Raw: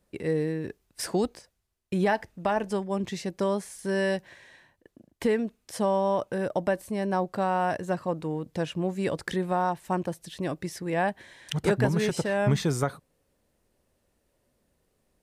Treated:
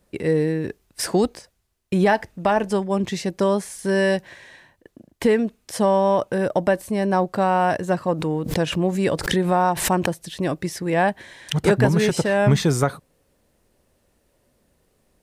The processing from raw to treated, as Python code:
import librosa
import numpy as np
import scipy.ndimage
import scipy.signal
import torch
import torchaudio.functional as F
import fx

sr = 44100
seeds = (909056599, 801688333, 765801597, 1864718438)

p1 = 10.0 ** (-19.0 / 20.0) * np.tanh(x / 10.0 ** (-19.0 / 20.0))
p2 = x + F.gain(torch.from_numpy(p1), -10.0).numpy()
p3 = fx.pre_swell(p2, sr, db_per_s=76.0, at=(8.1, 10.12))
y = F.gain(torch.from_numpy(p3), 5.0).numpy()